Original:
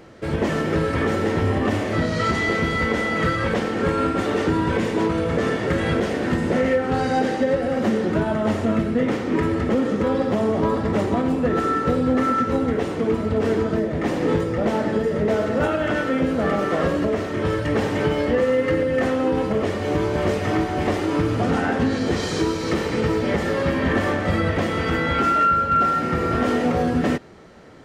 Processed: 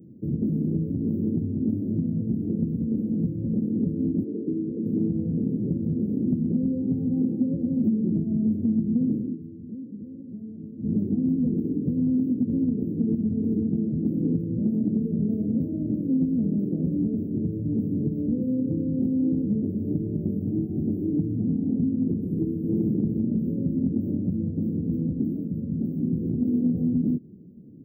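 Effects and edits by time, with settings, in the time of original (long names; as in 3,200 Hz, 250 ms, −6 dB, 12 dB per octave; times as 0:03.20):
0:04.24–0:04.86: resonant band-pass 410 Hz, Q 2
0:09.18–0:10.95: duck −18 dB, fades 0.18 s
0:22.59–0:23.03: thrown reverb, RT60 1.7 s, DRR −5.5 dB
whole clip: inverse Chebyshev band-stop filter 1,200–6,200 Hz, stop band 80 dB; downward compressor, threshold −26 dBFS; high-pass filter 180 Hz 12 dB per octave; level +8.5 dB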